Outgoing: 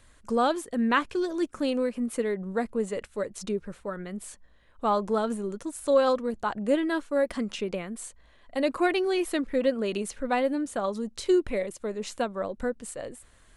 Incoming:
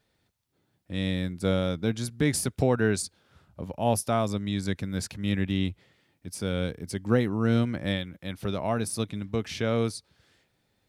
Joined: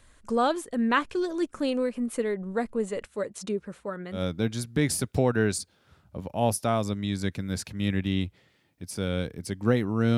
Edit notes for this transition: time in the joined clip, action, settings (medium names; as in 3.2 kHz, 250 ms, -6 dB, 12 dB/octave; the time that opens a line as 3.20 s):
outgoing
3.07–4.23 s: high-pass 76 Hz 12 dB/octave
4.17 s: go over to incoming from 1.61 s, crossfade 0.12 s